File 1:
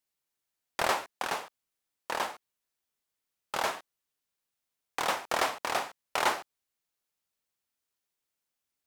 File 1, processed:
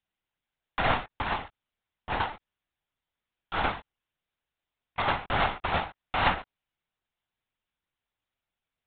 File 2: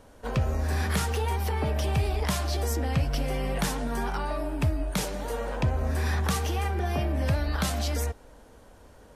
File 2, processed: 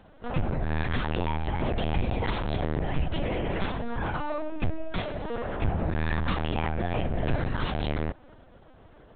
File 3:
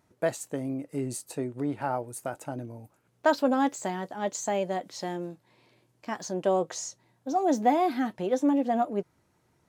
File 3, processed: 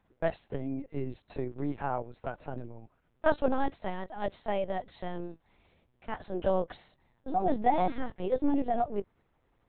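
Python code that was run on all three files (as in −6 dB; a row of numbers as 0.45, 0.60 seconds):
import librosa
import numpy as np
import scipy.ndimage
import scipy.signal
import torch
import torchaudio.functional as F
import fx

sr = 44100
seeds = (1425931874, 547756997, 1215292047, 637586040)

y = fx.lpc_vocoder(x, sr, seeds[0], excitation='pitch_kept', order=10)
y = librosa.util.normalize(y) * 10.0 ** (-12 / 20.0)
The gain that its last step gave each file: +3.5, −0.5, −2.5 decibels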